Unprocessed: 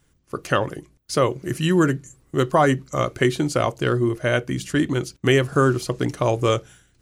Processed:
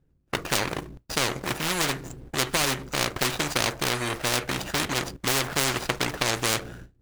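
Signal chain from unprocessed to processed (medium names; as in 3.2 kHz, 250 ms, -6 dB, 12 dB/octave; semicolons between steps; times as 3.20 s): median filter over 41 samples; gate with hold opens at -50 dBFS; spectrum-flattening compressor 4:1; trim +6.5 dB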